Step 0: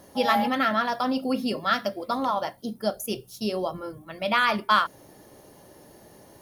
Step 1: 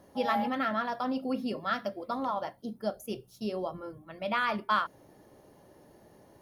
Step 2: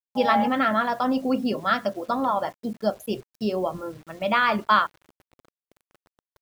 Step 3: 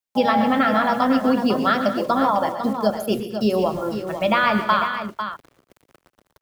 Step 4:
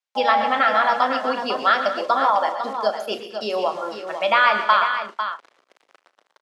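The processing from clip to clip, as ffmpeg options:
-af "highshelf=f=3000:g=-9,volume=0.531"
-af "aeval=exprs='sgn(val(0))*max(abs(val(0))-0.00106,0)':c=same,afftdn=nr=22:nf=-53,acrusher=bits=9:mix=0:aa=0.000001,volume=2.66"
-filter_complex "[0:a]acrossover=split=200[s0][s1];[s1]acompressor=threshold=0.0794:ratio=6[s2];[s0][s2]amix=inputs=2:normalize=0,aecho=1:1:119|136|187|239|499:0.237|0.178|0.119|0.168|0.355,volume=2.11"
-filter_complex "[0:a]highpass=650,lowpass=5600,asplit=2[s0][s1];[s1]adelay=36,volume=0.224[s2];[s0][s2]amix=inputs=2:normalize=0,volume=1.41"

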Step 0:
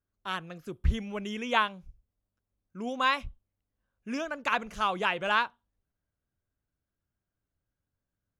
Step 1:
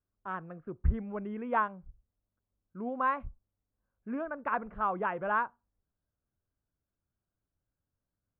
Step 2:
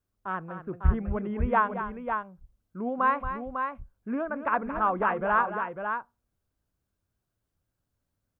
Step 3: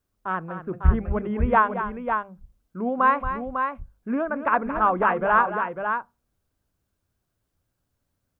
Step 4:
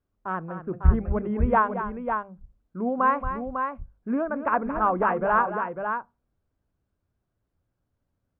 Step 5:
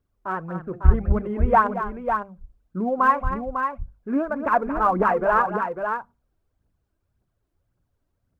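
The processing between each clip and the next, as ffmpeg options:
-af "lowpass=f=1500:w=0.5412,lowpass=f=1500:w=1.3066,volume=0.841"
-af "aecho=1:1:226|550:0.299|0.473,volume=1.78"
-af "bandreject=f=50:t=h:w=6,bandreject=f=100:t=h:w=6,bandreject=f=150:t=h:w=6,bandreject=f=200:t=h:w=6,volume=1.78"
-af "lowpass=f=1200:p=1"
-af "aphaser=in_gain=1:out_gain=1:delay=3.3:decay=0.48:speed=1.8:type=triangular,volume=1.19"

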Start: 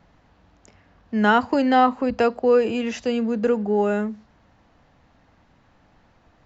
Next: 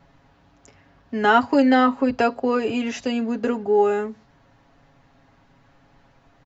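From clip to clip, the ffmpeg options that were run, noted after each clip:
-af "aecho=1:1:7.3:0.65"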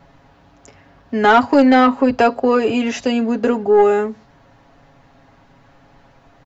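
-af "equalizer=f=630:t=o:w=1.5:g=2.5,acontrast=85,volume=0.841"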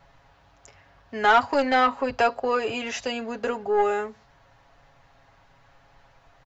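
-af "equalizer=f=250:t=o:w=1.6:g=-13,volume=0.631"

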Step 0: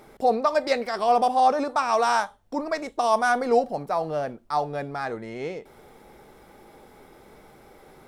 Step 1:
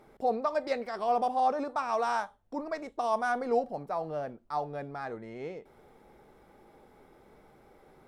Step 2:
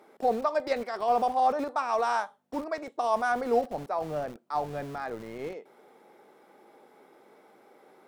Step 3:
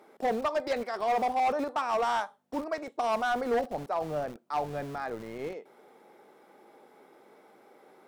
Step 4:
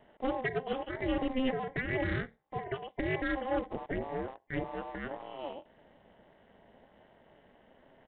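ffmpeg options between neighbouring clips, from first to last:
-af "highshelf=f=2700:g=-7.5,volume=0.447"
-filter_complex "[0:a]aeval=exprs='val(0)+0.000631*(sin(2*PI*50*n/s)+sin(2*PI*2*50*n/s)/2+sin(2*PI*3*50*n/s)/3+sin(2*PI*4*50*n/s)/4+sin(2*PI*5*50*n/s)/5)':c=same,acrossover=split=220[s0][s1];[s0]acrusher=bits=7:mix=0:aa=0.000001[s2];[s2][s1]amix=inputs=2:normalize=0,volume=1.33"
-af "asoftclip=type=hard:threshold=0.0708"
-af "afftfilt=real='real(if(between(b,1,1008),(2*floor((b-1)/48)+1)*48-b,b),0)':imag='imag(if(between(b,1,1008),(2*floor((b-1)/48)+1)*48-b,b),0)*if(between(b,1,1008),-1,1)':win_size=2048:overlap=0.75,tremolo=f=270:d=0.947,aresample=8000,aresample=44100"

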